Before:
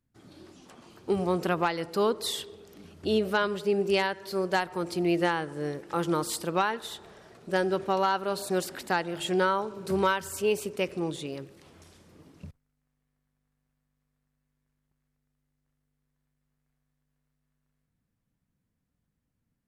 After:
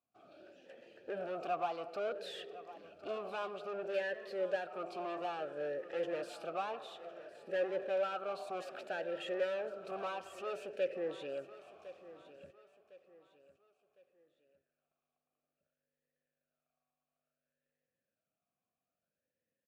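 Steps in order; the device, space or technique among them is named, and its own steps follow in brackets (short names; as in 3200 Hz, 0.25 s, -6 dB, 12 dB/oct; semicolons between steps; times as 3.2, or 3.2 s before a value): talk box (tube stage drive 33 dB, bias 0.4; vowel sweep a-e 0.59 Hz); feedback echo 1.057 s, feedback 38%, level -16 dB; gain +9 dB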